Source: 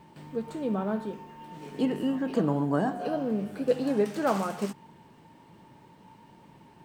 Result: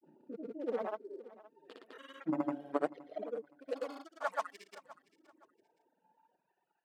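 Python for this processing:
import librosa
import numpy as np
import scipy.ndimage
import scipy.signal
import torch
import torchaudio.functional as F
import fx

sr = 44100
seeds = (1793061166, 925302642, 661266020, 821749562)

p1 = fx.wiener(x, sr, points=41)
p2 = fx.dereverb_blind(p1, sr, rt60_s=1.5)
p3 = fx.filter_lfo_highpass(p2, sr, shape='saw_up', hz=0.42, low_hz=240.0, high_hz=1500.0, q=1.2)
p4 = fx.dereverb_blind(p3, sr, rt60_s=1.1)
p5 = fx.granulator(p4, sr, seeds[0], grain_ms=100.0, per_s=20.0, spray_ms=100.0, spread_st=0)
p6 = fx.low_shelf(p5, sr, hz=250.0, db=-6.0)
p7 = fx.granulator(p6, sr, seeds[1], grain_ms=100.0, per_s=20.0, spray_ms=100.0, spread_st=0)
p8 = p7 + fx.echo_feedback(p7, sr, ms=519, feedback_pct=28, wet_db=-18.5, dry=0)
y = F.gain(torch.from_numpy(p8), 1.0).numpy()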